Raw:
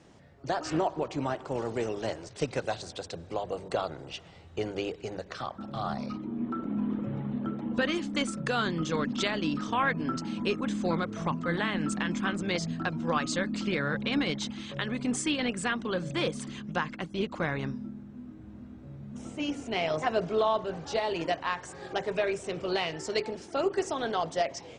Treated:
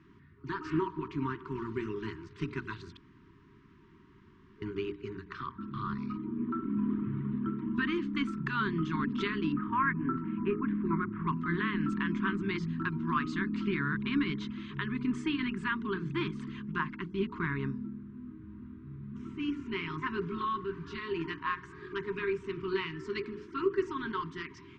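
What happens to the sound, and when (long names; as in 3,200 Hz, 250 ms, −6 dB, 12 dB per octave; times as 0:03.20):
0:02.97–0:04.62: fill with room tone
0:09.52–0:11.27: low-pass filter 2,200 Hz 24 dB per octave
whole clip: mains-hum notches 60/120/180/240/300/360/420 Hz; brick-wall band-stop 420–920 Hz; low-pass filter 2,100 Hz 12 dB per octave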